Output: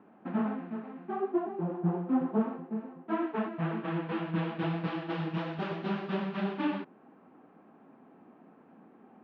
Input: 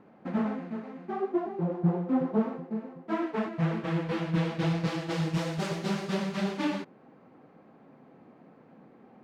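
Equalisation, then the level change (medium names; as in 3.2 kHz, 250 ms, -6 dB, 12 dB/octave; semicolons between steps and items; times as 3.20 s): cabinet simulation 130–3000 Hz, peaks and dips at 140 Hz -10 dB, 520 Hz -7 dB, 2.1 kHz -6 dB; 0.0 dB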